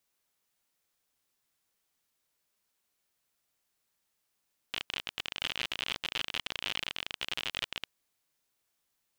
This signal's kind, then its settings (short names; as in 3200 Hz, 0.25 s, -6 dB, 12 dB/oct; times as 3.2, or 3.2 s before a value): random clicks 51/s -17 dBFS 3.14 s